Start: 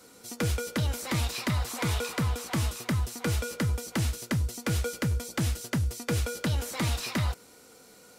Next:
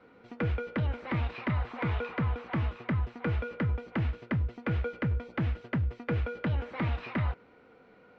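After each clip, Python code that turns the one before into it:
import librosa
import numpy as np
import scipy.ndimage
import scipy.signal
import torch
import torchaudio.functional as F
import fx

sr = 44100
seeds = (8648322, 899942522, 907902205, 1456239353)

y = scipy.signal.sosfilt(scipy.signal.butter(4, 2500.0, 'lowpass', fs=sr, output='sos'), x)
y = y * librosa.db_to_amplitude(-1.5)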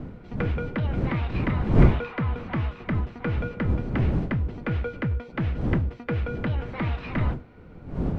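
y = fx.dmg_wind(x, sr, seeds[0], corner_hz=200.0, level_db=-31.0)
y = y * librosa.db_to_amplitude(3.0)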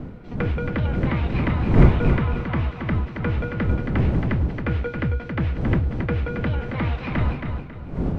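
y = fx.echo_feedback(x, sr, ms=273, feedback_pct=31, wet_db=-6.0)
y = y * librosa.db_to_amplitude(2.5)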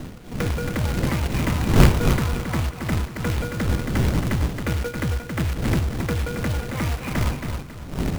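y = fx.quant_companded(x, sr, bits=4)
y = y * librosa.db_to_amplitude(-1.0)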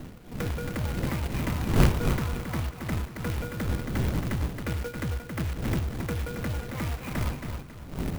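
y = fx.clock_jitter(x, sr, seeds[1], jitter_ms=0.028)
y = y * librosa.db_to_amplitude(-6.5)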